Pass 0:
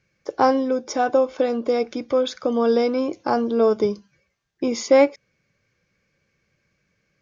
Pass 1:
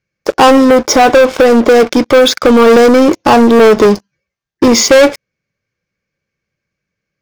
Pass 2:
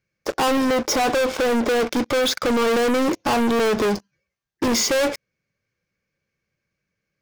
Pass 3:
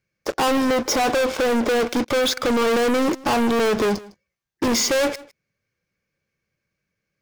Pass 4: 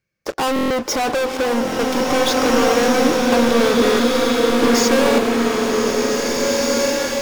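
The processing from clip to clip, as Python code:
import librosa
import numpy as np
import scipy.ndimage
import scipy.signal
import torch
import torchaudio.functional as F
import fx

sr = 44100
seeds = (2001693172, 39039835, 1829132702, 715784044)

y1 = fx.leveller(x, sr, passes=5)
y1 = y1 * 10.0 ** (3.0 / 20.0)
y2 = 10.0 ** (-15.0 / 20.0) * np.tanh(y1 / 10.0 ** (-15.0 / 20.0))
y2 = y2 * 10.0 ** (-3.0 / 20.0)
y3 = y2 + 10.0 ** (-21.0 / 20.0) * np.pad(y2, (int(156 * sr / 1000.0), 0))[:len(y2)]
y4 = fx.buffer_glitch(y3, sr, at_s=(0.54, 1.63, 3.16, 3.83, 5.02), block=1024, repeats=6)
y4 = fx.rev_bloom(y4, sr, seeds[0], attack_ms=2030, drr_db=-3.0)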